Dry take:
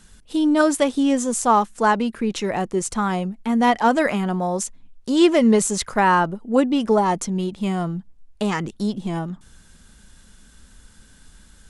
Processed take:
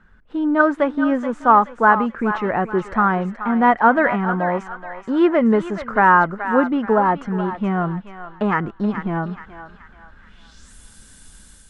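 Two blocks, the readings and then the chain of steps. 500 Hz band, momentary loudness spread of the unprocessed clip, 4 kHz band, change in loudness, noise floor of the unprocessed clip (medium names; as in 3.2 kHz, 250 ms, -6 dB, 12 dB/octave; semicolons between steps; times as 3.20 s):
+1.0 dB, 10 LU, under -10 dB, +2.0 dB, -51 dBFS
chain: level rider gain up to 5.5 dB; low-pass sweep 1.5 kHz -> 9.9 kHz, 10.17–10.75 s; on a send: thinning echo 427 ms, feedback 49%, high-pass 970 Hz, level -8 dB; on the sum: trim -3.5 dB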